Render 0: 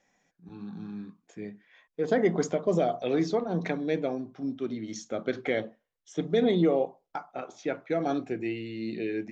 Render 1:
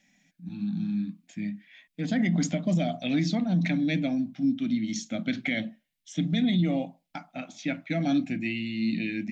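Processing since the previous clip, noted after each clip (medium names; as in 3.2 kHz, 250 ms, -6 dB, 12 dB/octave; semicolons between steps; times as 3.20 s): FFT filter 120 Hz 0 dB, 180 Hz +9 dB, 290 Hz +5 dB, 410 Hz -24 dB, 620 Hz -4 dB, 1.1 kHz -13 dB, 2.2 kHz +6 dB, 3.9 kHz +6 dB, 6.1 kHz +2 dB, 9.2 kHz +5 dB; peak limiter -20 dBFS, peak gain reduction 8.5 dB; trim +2.5 dB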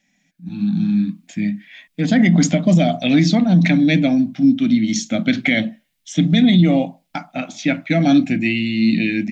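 level rider gain up to 12 dB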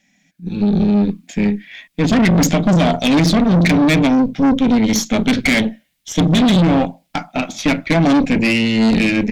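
valve stage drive 19 dB, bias 0.7; trim +9 dB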